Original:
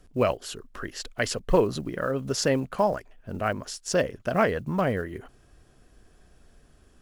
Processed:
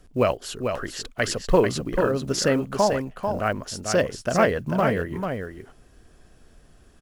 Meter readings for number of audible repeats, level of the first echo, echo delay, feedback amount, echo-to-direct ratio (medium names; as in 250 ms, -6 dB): 1, -6.0 dB, 443 ms, no regular repeats, -6.0 dB